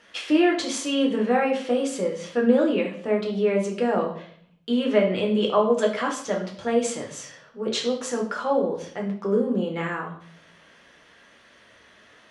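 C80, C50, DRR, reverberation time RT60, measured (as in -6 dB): 12.0 dB, 7.5 dB, -0.5 dB, 0.60 s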